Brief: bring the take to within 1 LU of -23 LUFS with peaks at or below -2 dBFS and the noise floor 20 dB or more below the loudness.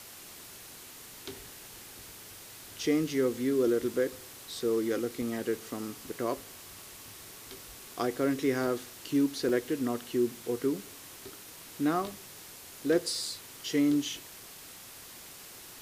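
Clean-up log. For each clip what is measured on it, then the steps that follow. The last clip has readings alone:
dropouts 3; longest dropout 2.5 ms; noise floor -49 dBFS; noise floor target -51 dBFS; loudness -31.0 LUFS; peak -15.0 dBFS; loudness target -23.0 LUFS
-> interpolate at 5.22/8.67/9.49, 2.5 ms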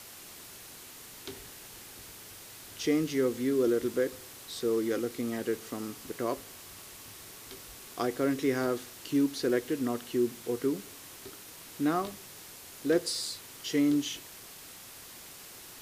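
dropouts 0; noise floor -49 dBFS; noise floor target -51 dBFS
-> noise print and reduce 6 dB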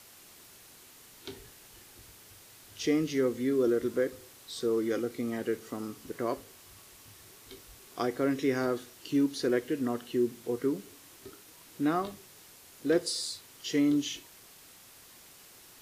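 noise floor -55 dBFS; loudness -31.0 LUFS; peak -15.0 dBFS; loudness target -23.0 LUFS
-> gain +8 dB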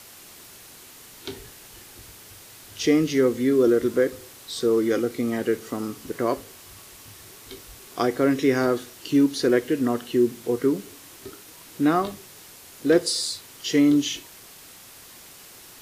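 loudness -23.0 LUFS; peak -7.0 dBFS; noise floor -47 dBFS

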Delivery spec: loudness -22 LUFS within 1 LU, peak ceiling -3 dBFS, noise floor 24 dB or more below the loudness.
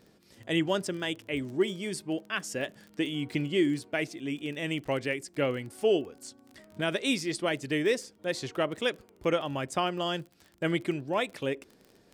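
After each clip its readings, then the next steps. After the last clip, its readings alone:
ticks 27/s; loudness -31.0 LUFS; peak -15.5 dBFS; loudness target -22.0 LUFS
-> de-click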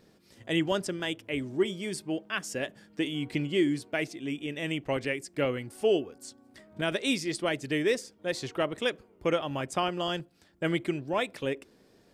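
ticks 0/s; loudness -31.0 LUFS; peak -15.5 dBFS; loudness target -22.0 LUFS
-> gain +9 dB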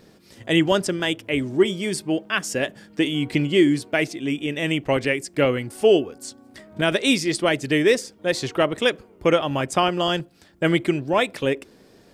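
loudness -22.0 LUFS; peak -6.5 dBFS; noise floor -53 dBFS

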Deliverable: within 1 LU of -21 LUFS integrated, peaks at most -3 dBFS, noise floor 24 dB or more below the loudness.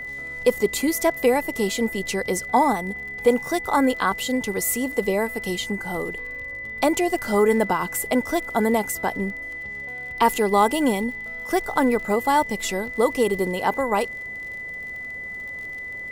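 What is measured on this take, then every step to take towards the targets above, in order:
ticks 41/s; steady tone 2000 Hz; tone level -31 dBFS; loudness -23.5 LUFS; peak -6.5 dBFS; loudness target -21.0 LUFS
-> de-click; notch 2000 Hz, Q 30; gain +2.5 dB

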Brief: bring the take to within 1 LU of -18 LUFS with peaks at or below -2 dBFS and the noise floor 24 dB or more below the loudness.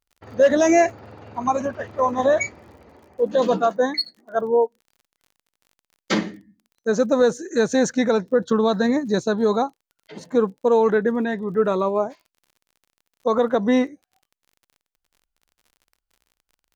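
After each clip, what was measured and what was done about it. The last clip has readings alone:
ticks 39/s; loudness -21.0 LUFS; peak -6.5 dBFS; loudness target -18.0 LUFS
-> de-click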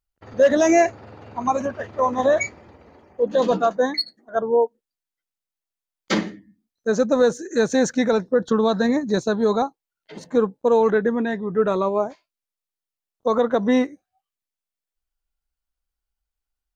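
ticks 0.060/s; loudness -21.0 LUFS; peak -6.5 dBFS; loudness target -18.0 LUFS
-> gain +3 dB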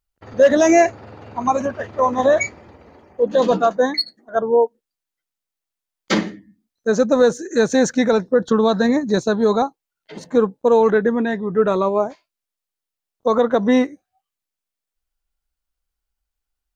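loudness -18.0 LUFS; peak -3.5 dBFS; noise floor -85 dBFS

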